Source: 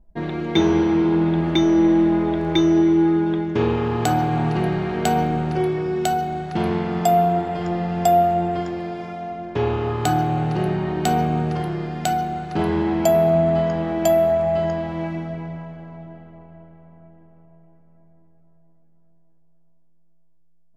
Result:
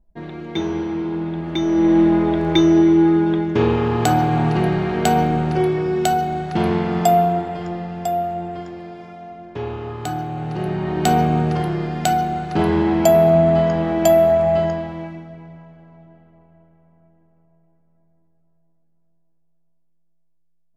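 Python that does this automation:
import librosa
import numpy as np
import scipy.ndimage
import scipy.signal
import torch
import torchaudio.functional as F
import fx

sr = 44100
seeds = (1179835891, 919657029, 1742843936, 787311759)

y = fx.gain(x, sr, db=fx.line((1.45, -6.0), (1.99, 3.0), (7.02, 3.0), (8.03, -6.0), (10.33, -6.0), (11.08, 3.5), (14.58, 3.5), (15.26, -8.0)))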